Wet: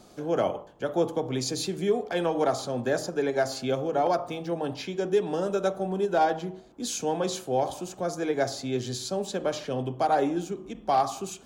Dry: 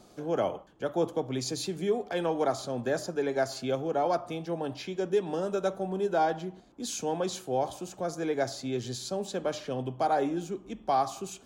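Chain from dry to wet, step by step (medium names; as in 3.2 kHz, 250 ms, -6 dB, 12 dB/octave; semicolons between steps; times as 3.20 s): 3.99–4.53 s: median filter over 3 samples; de-hum 53.44 Hz, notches 24; hard clipper -18 dBFS, distortion -32 dB; endings held to a fixed fall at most 280 dB/s; trim +3.5 dB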